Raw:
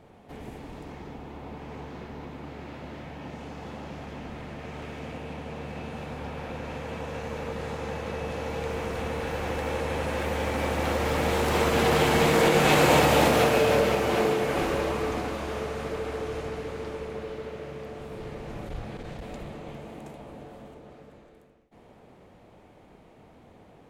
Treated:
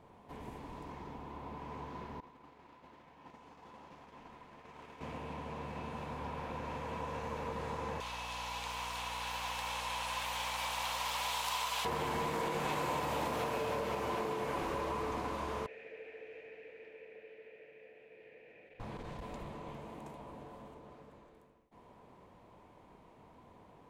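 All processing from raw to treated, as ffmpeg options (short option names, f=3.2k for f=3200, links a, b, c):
-filter_complex "[0:a]asettb=1/sr,asplit=3[a][b][c];[a]atrim=end=2.204[d];[b]atrim=start=2.2:end=5.01,asetpts=PTS-STARTPTS,afade=t=in:d=0.004:c=qsin,afade=t=out:st=2.806:d=0.004:c=qsin,agate=range=-33dB:threshold=-33dB:ratio=3:release=100:detection=peak,equalizer=f=83:t=o:w=2.9:g=-9,bandreject=f=610:w=19[e];[c]atrim=start=5.006[f];[d][e]acrossfade=d=0.004:c1=hsin:c2=qsin[g];[g][f]acrossfade=d=0.004:c1=qsin:c2=hsin,asettb=1/sr,asplit=3[h][i][j];[h]atrim=end=8.004[k];[i]atrim=start=8:end=11.85,asetpts=PTS-STARTPTS,afade=t=in:d=0.004:c=qsin,afade=t=out:st=3.846:d=0.004:c=qsin,highpass=f=750:w=0.5412,highpass=f=750:w=1.3066,highshelf=f=2.4k:t=q:w=1.5:g=7.5,aeval=exprs='val(0)+0.00708*(sin(2*PI*60*n/s)+sin(2*PI*2*60*n/s)/2+sin(2*PI*3*60*n/s)/3+sin(2*PI*4*60*n/s)/4+sin(2*PI*5*60*n/s)/5)':c=same[l];[j]atrim=start=11.846[m];[k][l]acrossfade=d=0.004:c1=hsin:c2=qsin[n];[n][m]acrossfade=d=0.004:c1=qsin:c2=hsin,asettb=1/sr,asplit=3[o][p][q];[o]atrim=end=15.664[r];[p]atrim=start=15.66:end=18.8,asetpts=PTS-STARTPTS,afade=t=in:d=0.004:c=qsin,afade=t=out:st=3.136:d=0.004:c=qsin,asplit=3[s][t][u];[s]bandpass=f=530:t=q:w=8,volume=0dB[v];[t]bandpass=f=1.84k:t=q:w=8,volume=-6dB[w];[u]bandpass=f=2.48k:t=q:w=8,volume=-9dB[x];[v][w][x]amix=inputs=3:normalize=0,equalizer=f=2.3k:w=3.5:g=13.5,bandreject=f=560:w=5.3[y];[q]atrim=start=18.796[z];[r][y]acrossfade=d=0.004:c1=hsin:c2=qsin[aa];[aa][z]acrossfade=d=0.004:c1=qsin:c2=hsin,equalizer=f=1k:w=6.9:g=14,acompressor=threshold=-26dB:ratio=6,volume=-7dB"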